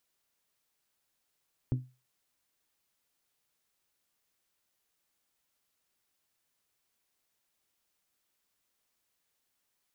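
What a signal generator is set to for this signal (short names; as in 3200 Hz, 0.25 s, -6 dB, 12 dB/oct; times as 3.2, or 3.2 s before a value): glass hit bell, lowest mode 127 Hz, decay 0.30 s, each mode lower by 7 dB, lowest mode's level -23 dB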